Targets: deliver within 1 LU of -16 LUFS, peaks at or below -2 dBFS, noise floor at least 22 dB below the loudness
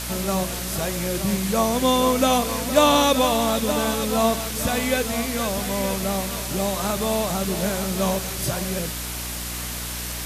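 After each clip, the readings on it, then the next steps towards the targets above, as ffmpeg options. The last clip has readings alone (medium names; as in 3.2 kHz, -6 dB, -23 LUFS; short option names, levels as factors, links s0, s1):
hum 60 Hz; highest harmonic 300 Hz; hum level -32 dBFS; noise floor -30 dBFS; noise floor target -45 dBFS; loudness -22.5 LUFS; peak level -4.0 dBFS; loudness target -16.0 LUFS
-> -af "bandreject=f=60:t=h:w=6,bandreject=f=120:t=h:w=6,bandreject=f=180:t=h:w=6,bandreject=f=240:t=h:w=6,bandreject=f=300:t=h:w=6"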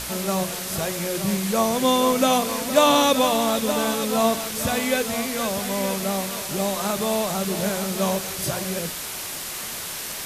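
hum not found; noise floor -32 dBFS; noise floor target -45 dBFS
-> -af "afftdn=nr=13:nf=-32"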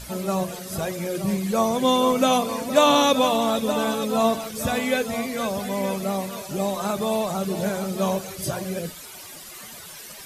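noise floor -41 dBFS; noise floor target -46 dBFS
-> -af "afftdn=nr=6:nf=-41"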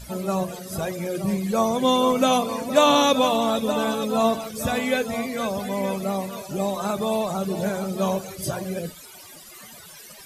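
noise floor -44 dBFS; noise floor target -46 dBFS
-> -af "afftdn=nr=6:nf=-44"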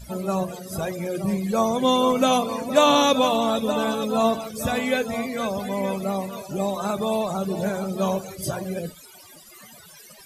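noise floor -47 dBFS; loudness -23.5 LUFS; peak level -4.5 dBFS; loudness target -16.0 LUFS
-> -af "volume=2.37,alimiter=limit=0.794:level=0:latency=1"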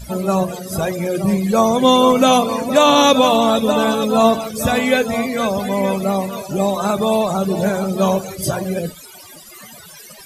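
loudness -16.5 LUFS; peak level -2.0 dBFS; noise floor -40 dBFS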